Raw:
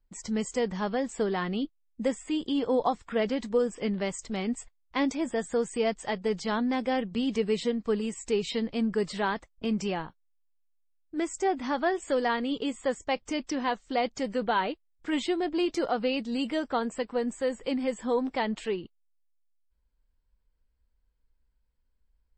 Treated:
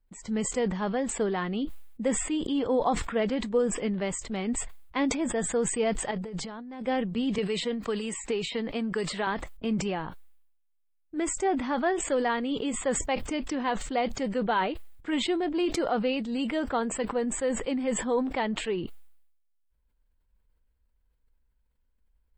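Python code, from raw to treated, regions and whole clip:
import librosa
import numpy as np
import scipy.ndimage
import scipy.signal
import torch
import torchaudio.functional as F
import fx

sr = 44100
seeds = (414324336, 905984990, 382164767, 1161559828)

y = fx.chain(x, sr, fx.peak_eq(hz=3000.0, db=-3.5, octaves=1.7),
    fx.over_compress(threshold_db=-38.0, ratio=-1.0), at=(6.11, 6.82))
y = fx.chain(y, sr, fx.low_shelf(hz=390.0, db=-8.0),
    fx.band_squash(depth_pct=100), at=(7.38, 9.27))
y = fx.peak_eq(y, sr, hz=5700.0, db=-10.0, octaves=0.7)
y = fx.sustainer(y, sr, db_per_s=61.0)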